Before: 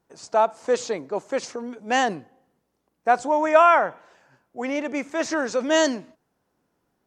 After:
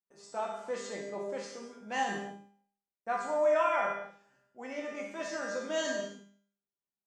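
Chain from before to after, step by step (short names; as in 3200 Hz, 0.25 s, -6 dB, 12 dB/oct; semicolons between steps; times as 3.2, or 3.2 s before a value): gate with hold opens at -50 dBFS; resonator 200 Hz, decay 0.51 s, harmonics all, mix 90%; non-linear reverb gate 0.29 s falling, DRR 0 dB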